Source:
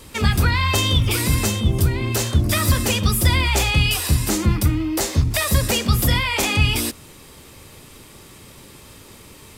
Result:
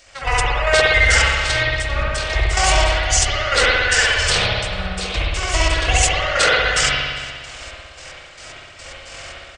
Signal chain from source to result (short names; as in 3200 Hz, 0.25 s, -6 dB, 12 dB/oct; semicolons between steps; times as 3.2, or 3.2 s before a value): bell 890 Hz +12 dB 1.2 oct; step gate "..x..x.xx..x" 111 bpm -12 dB; pitch shift -9 st; in parallel at -2 dB: compressor, threshold -26 dBFS, peak gain reduction 14 dB; on the sum: EQ curve 110 Hz 0 dB, 200 Hz -16 dB, 360 Hz -5 dB, 2400 Hz +12 dB; spring tank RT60 1.7 s, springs 59 ms, chirp 75 ms, DRR -6 dB; gain -7.5 dB